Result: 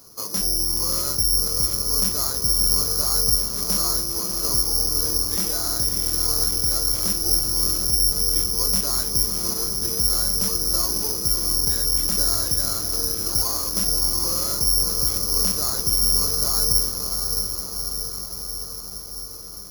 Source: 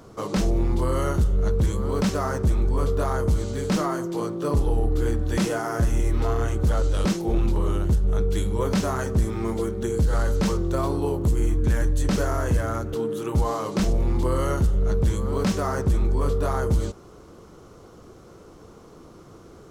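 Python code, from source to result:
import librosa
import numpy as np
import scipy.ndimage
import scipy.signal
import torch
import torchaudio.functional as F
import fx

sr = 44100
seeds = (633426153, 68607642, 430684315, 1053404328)

p1 = fx.peak_eq(x, sr, hz=1100.0, db=5.0, octaves=0.85)
p2 = p1 + fx.echo_diffused(p1, sr, ms=646, feedback_pct=68, wet_db=-6, dry=0)
p3 = (np.kron(p2[::8], np.eye(8)[0]) * 8)[:len(p2)]
y = p3 * librosa.db_to_amplitude(-11.0)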